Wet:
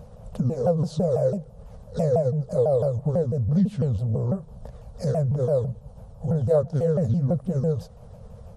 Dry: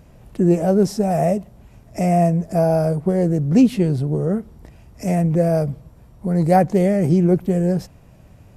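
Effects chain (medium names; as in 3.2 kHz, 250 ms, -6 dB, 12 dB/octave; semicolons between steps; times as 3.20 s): sawtooth pitch modulation -7 st, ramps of 166 ms; FFT filter 220 Hz 0 dB, 320 Hz -23 dB, 480 Hz +6 dB, 1.2 kHz -1 dB, 2.1 kHz -15 dB, 3 kHz -6 dB; compression 2:1, threshold -32 dBFS, peak gain reduction 13.5 dB; trim +4.5 dB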